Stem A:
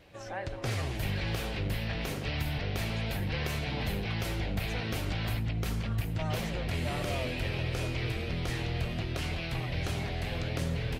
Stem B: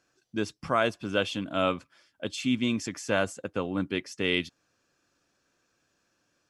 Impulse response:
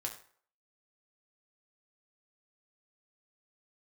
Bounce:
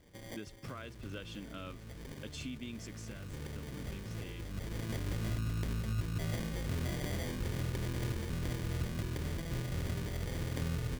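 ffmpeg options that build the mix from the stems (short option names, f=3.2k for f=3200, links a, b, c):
-filter_complex "[0:a]acrusher=samples=33:mix=1:aa=0.000001,volume=-3dB[a];[1:a]acompressor=threshold=-31dB:ratio=5,volume=-9dB,afade=t=out:st=2.79:d=0.39:silence=0.421697,asplit=2[b][c];[c]apad=whole_len=484733[d];[a][d]sidechaincompress=threshold=-52dB:ratio=8:attack=33:release=909[e];[e][b]amix=inputs=2:normalize=0,equalizer=f=770:w=1.7:g=-10.5"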